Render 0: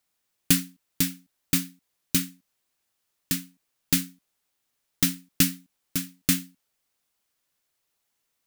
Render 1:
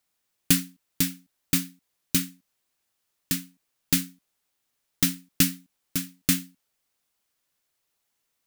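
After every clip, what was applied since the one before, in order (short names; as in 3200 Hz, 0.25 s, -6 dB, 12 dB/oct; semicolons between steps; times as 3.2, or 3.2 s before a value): nothing audible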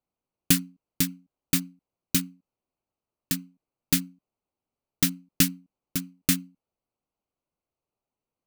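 Wiener smoothing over 25 samples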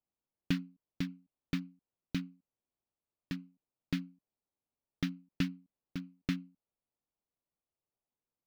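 air absorption 290 m; gain -7 dB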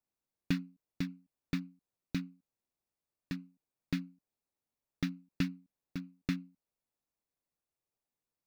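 notch 3100 Hz, Q 7.6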